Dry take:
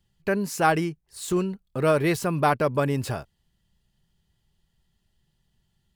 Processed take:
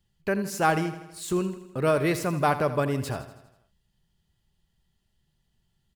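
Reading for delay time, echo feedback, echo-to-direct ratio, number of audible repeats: 81 ms, 57%, -11.5 dB, 5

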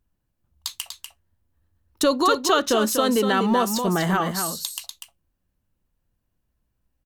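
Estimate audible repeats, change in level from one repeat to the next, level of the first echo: 1, no regular repeats, -7.0 dB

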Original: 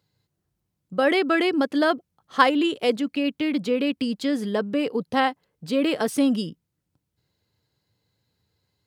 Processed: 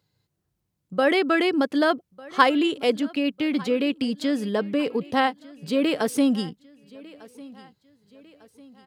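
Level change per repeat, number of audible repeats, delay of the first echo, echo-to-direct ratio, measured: -7.0 dB, 2, 1200 ms, -21.0 dB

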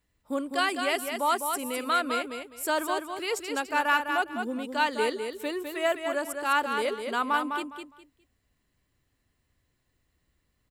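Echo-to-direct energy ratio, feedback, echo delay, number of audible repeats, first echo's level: -6.0 dB, 23%, 205 ms, 3, -6.0 dB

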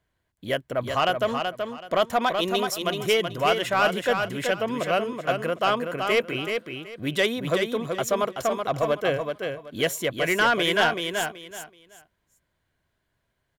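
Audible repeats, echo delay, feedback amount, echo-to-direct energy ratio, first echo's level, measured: 3, 378 ms, 23%, -5.5 dB, -5.5 dB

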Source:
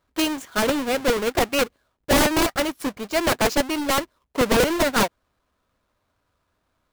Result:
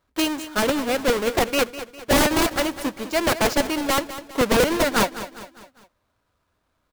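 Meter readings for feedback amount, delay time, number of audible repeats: 46%, 202 ms, 4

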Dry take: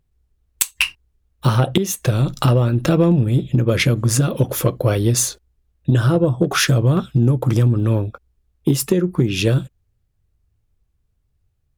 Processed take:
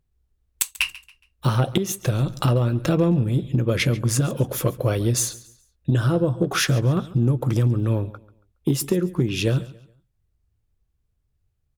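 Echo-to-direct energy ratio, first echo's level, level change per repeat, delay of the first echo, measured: -18.5 dB, -19.0 dB, -9.5 dB, 139 ms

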